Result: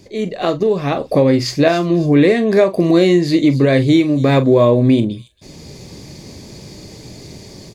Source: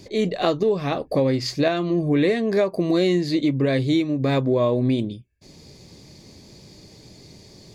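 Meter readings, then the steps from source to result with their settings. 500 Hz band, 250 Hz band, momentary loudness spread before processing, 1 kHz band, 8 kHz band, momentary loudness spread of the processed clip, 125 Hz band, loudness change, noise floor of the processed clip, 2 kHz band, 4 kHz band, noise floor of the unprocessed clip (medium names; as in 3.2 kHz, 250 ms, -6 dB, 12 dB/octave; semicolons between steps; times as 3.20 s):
+7.5 dB, +8.0 dB, 4 LU, +7.0 dB, no reading, 7 LU, +8.0 dB, +7.5 dB, -39 dBFS, +7.5 dB, +5.0 dB, -48 dBFS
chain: peaking EQ 4.2 kHz -3.5 dB 0.73 oct; level rider gain up to 11 dB; doubling 42 ms -12.5 dB; feedback echo behind a high-pass 275 ms, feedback 34%, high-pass 5.5 kHz, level -8.5 dB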